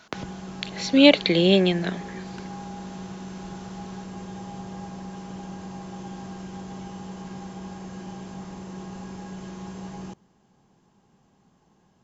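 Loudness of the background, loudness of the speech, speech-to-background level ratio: −38.0 LKFS, −19.0 LKFS, 19.0 dB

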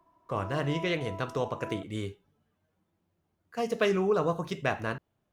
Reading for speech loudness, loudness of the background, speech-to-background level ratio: −31.5 LKFS, −44.0 LKFS, 12.5 dB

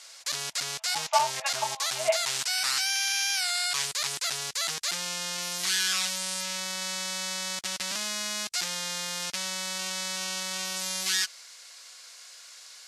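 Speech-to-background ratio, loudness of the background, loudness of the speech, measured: −2.0 dB, −28.5 LKFS, −30.5 LKFS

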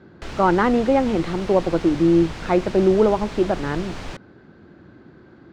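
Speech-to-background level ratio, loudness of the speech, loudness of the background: 15.0 dB, −19.5 LKFS, −34.5 LKFS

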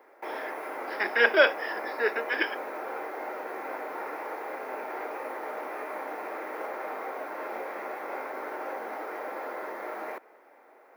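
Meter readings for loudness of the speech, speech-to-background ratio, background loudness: −26.0 LKFS, 10.5 dB, −36.5 LKFS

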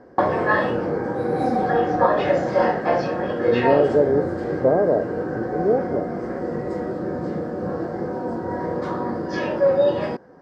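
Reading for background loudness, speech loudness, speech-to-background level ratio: −23.0 LKFS, −22.5 LKFS, 0.5 dB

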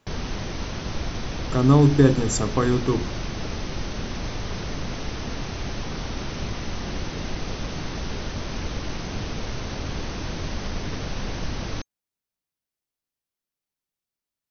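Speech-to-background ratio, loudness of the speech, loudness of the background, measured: 12.0 dB, −20.0 LKFS, −32.0 LKFS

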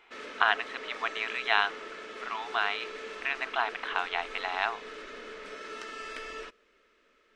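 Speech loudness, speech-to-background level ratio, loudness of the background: −30.5 LKFS, 11.0 dB, −41.5 LKFS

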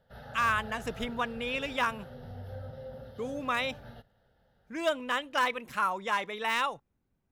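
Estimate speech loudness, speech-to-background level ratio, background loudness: −31.5 LKFS, 14.5 dB, −46.0 LKFS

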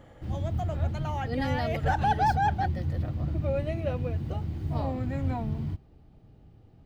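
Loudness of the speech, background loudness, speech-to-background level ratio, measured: −30.5 LKFS, −31.5 LKFS, 1.0 dB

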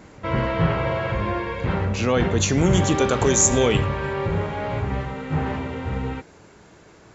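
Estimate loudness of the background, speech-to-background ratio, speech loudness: −25.0 LKFS, 4.5 dB, −20.5 LKFS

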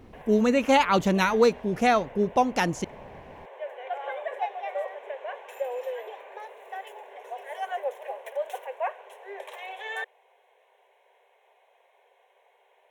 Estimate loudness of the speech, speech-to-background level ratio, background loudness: −23.0 LKFS, 14.0 dB, −37.0 LKFS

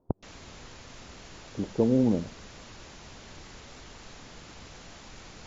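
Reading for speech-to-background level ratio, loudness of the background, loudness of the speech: 19.5 dB, −47.0 LKFS, −27.5 LKFS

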